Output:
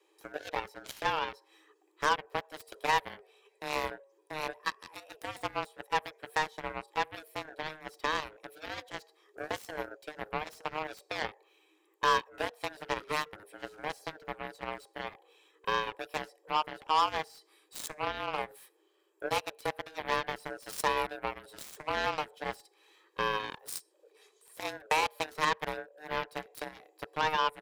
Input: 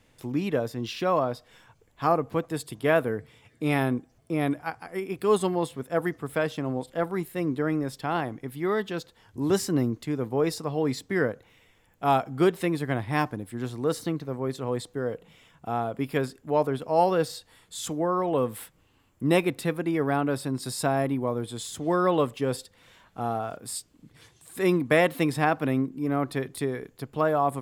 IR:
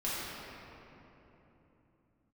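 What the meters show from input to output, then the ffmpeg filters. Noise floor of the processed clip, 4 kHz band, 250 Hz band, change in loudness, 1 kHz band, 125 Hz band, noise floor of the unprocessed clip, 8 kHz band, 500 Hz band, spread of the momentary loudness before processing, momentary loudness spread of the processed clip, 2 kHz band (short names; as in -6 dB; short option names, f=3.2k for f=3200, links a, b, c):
-70 dBFS, +1.0 dB, -19.5 dB, -7.5 dB, -2.5 dB, -20.0 dB, -63 dBFS, -6.5 dB, -12.5 dB, 10 LU, 14 LU, -1.5 dB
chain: -filter_complex "[0:a]acompressor=threshold=-33dB:ratio=2.5,aecho=1:1:1.4:0.58,afreqshift=310,bandreject=f=91.84:t=h:w=4,bandreject=f=183.68:t=h:w=4,bandreject=f=275.52:t=h:w=4,bandreject=f=367.36:t=h:w=4,bandreject=f=459.2:t=h:w=4,bandreject=f=551.04:t=h:w=4,bandreject=f=642.88:t=h:w=4,bandreject=f=734.72:t=h:w=4,asplit=2[a][b];[1:a]atrim=start_sample=2205,atrim=end_sample=6174[c];[b][c]afir=irnorm=-1:irlink=0,volume=-25.5dB[d];[a][d]amix=inputs=2:normalize=0,aeval=exprs='0.133*(cos(1*acos(clip(val(0)/0.133,-1,1)))-cos(1*PI/2))+0.0106*(cos(3*acos(clip(val(0)/0.133,-1,1)))-cos(3*PI/2))+0.0188*(cos(7*acos(clip(val(0)/0.133,-1,1)))-cos(7*PI/2))':c=same,volume=3.5dB"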